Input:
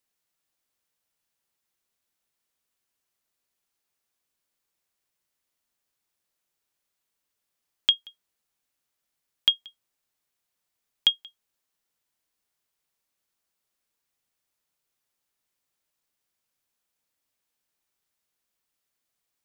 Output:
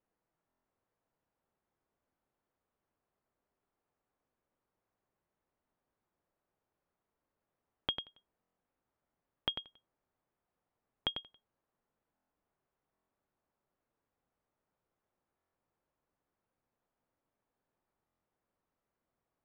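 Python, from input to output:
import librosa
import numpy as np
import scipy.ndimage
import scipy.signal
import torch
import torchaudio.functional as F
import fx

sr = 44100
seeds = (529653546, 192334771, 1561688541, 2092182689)

y = scipy.signal.sosfilt(scipy.signal.butter(2, 1000.0, 'lowpass', fs=sr, output='sos'), x)
y = y + 10.0 ** (-7.5 / 20.0) * np.pad(y, (int(96 * sr / 1000.0), 0))[:len(y)]
y = fx.buffer_glitch(y, sr, at_s=(0.48, 8.41, 12.14, 12.93, 15.37, 18.06), block=1024, repeats=6)
y = y * 10.0 ** (5.5 / 20.0)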